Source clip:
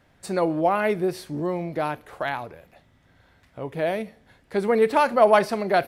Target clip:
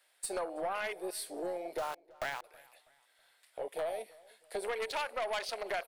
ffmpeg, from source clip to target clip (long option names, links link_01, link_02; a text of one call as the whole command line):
ffmpeg -i in.wav -filter_complex "[0:a]acrossover=split=1800[link_01][link_02];[link_01]asoftclip=type=tanh:threshold=-17.5dB[link_03];[link_02]acontrast=70[link_04];[link_03][link_04]amix=inputs=2:normalize=0,equalizer=frequency=4900:width_type=o:width=1.4:gain=10.5,afwtdn=0.0562,highshelf=frequency=7500:width_type=q:width=3:gain=7.5,asettb=1/sr,asplit=3[link_05][link_06][link_07];[link_05]atrim=end=1.784[link_08];[link_06]atrim=start=1.78:end=2.44,asetpts=PTS-STARTPTS,afade=type=in:duration=0.004:curve=qsin,afade=type=out:start_time=0.656:duration=0.004:curve=qsin,aeval=exprs='val(0)*gte(abs(val(0)),0.0251)':channel_layout=same[link_09];[link_07]atrim=start=2.436[link_10];[link_08][link_09]acrossfade=duration=0.004:curve1=hsin:curve2=qsin[link_11];[link_11][link_10]acrossfade=duration=0.004:curve1=qsin:curve2=hsin,highpass=frequency=490:width=0.5412,highpass=frequency=490:width=1.3066,acompressor=threshold=-36dB:ratio=5,aeval=exprs='0.075*(cos(1*acos(clip(val(0)/0.075,-1,1)))-cos(1*PI/2))+0.0188*(cos(2*acos(clip(val(0)/0.075,-1,1)))-cos(2*PI/2))+0.0133*(cos(5*acos(clip(val(0)/0.075,-1,1)))-cos(5*PI/2))':channel_layout=same,asplit=2[link_12][link_13];[link_13]adelay=324,lowpass=frequency=4100:poles=1,volume=-23dB,asplit=2[link_14][link_15];[link_15]adelay=324,lowpass=frequency=4100:poles=1,volume=0.41,asplit=2[link_16][link_17];[link_17]adelay=324,lowpass=frequency=4100:poles=1,volume=0.41[link_18];[link_14][link_16][link_18]amix=inputs=3:normalize=0[link_19];[link_12][link_19]amix=inputs=2:normalize=0,volume=-2.5dB" out.wav